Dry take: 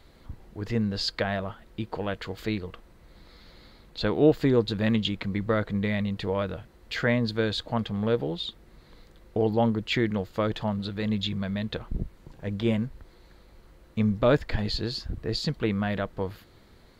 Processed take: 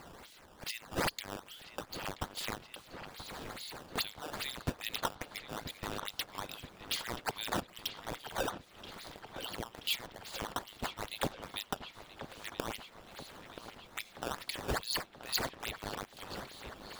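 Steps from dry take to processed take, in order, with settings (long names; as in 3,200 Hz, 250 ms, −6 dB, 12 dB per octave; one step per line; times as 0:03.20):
inverse Chebyshev high-pass filter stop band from 500 Hz, stop band 80 dB
downward compressor 2.5 to 1, threshold −54 dBFS, peak gain reduction 18.5 dB
sample-and-hold swept by an LFO 12×, swing 160% 2.4 Hz
on a send: delay with a low-pass on its return 979 ms, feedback 66%, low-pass 3,900 Hz, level −11.5 dB
on the sum: level +14.5 dB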